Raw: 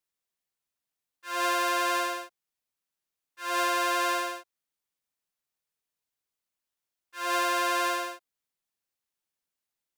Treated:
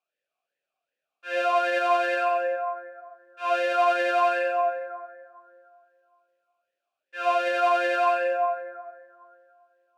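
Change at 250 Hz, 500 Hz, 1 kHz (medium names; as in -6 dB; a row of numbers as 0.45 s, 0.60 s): -1.5 dB, +11.0 dB, +5.0 dB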